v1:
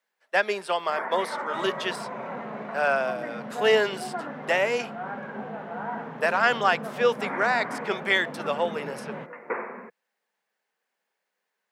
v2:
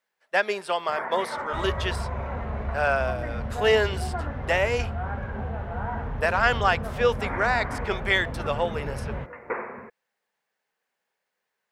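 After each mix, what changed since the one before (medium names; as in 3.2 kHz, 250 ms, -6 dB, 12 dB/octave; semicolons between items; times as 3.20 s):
master: remove steep high-pass 160 Hz 48 dB/octave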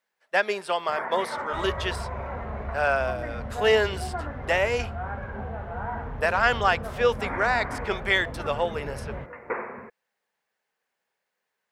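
second sound -4.0 dB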